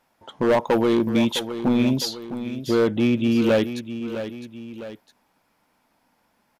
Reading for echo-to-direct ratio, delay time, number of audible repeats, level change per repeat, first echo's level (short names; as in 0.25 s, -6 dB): -10.0 dB, 0.658 s, 2, -6.0 dB, -11.0 dB